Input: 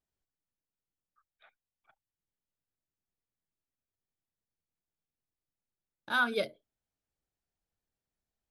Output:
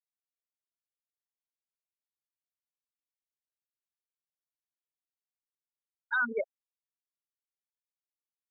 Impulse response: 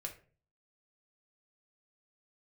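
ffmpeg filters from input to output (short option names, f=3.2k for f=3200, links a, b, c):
-af "afftfilt=real='re*gte(hypot(re,im),0.112)':imag='im*gte(hypot(re,im),0.112)':win_size=1024:overlap=0.75,equalizer=f=1.8k:t=o:w=0.93:g=10,alimiter=limit=-21.5dB:level=0:latency=1:release=45"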